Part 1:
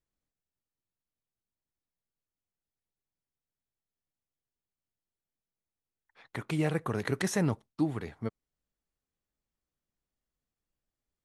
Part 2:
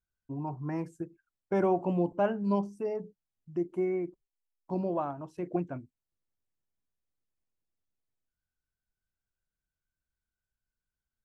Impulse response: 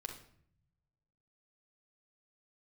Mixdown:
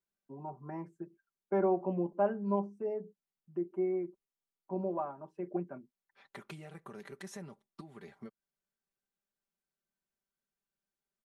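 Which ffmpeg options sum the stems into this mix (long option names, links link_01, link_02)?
-filter_complex "[0:a]alimiter=limit=-21dB:level=0:latency=1:release=299,highpass=150,acompressor=threshold=-39dB:ratio=6,volume=-6.5dB[link_01];[1:a]acrossover=split=190 2100:gain=0.2 1 0.141[link_02][link_03][link_04];[link_02][link_03][link_04]amix=inputs=3:normalize=0,volume=-5.5dB[link_05];[link_01][link_05]amix=inputs=2:normalize=0,aecho=1:1:5.1:0.69"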